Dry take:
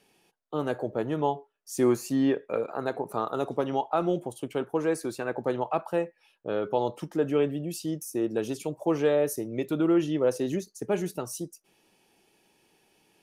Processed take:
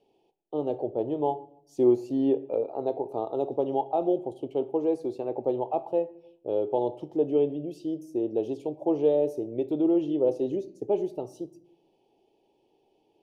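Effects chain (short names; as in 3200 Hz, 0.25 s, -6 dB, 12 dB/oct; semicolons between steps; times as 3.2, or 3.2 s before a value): EQ curve 120 Hz 0 dB, 170 Hz -6 dB, 350 Hz +7 dB, 840 Hz +4 dB, 1500 Hz -24 dB, 3100 Hz -4 dB, 9700 Hz -20 dB; on a send: reverb RT60 0.75 s, pre-delay 7 ms, DRR 12.5 dB; on the sum: gain -4.5 dB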